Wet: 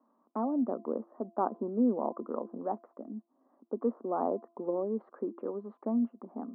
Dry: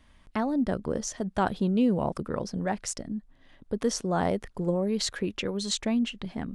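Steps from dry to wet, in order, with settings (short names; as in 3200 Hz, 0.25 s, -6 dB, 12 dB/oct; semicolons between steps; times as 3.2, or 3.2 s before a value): Chebyshev band-pass 230–1200 Hz, order 4; de-hum 340.3 Hz, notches 3; gain -2.5 dB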